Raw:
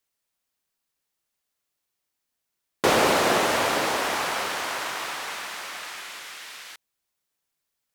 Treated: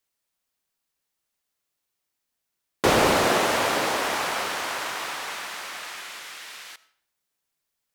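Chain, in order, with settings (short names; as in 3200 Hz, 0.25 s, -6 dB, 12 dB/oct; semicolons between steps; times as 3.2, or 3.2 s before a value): 2.85–3.27 low shelf 120 Hz +11 dB; reverb RT60 0.60 s, pre-delay 40 ms, DRR 18 dB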